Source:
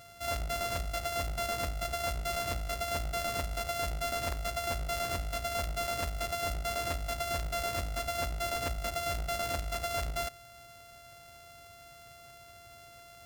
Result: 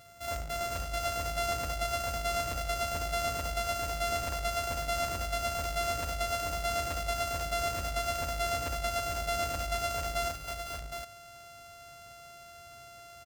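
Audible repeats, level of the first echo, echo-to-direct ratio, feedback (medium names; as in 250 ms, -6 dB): 4, -10.0 dB, -1.5 dB, no regular repeats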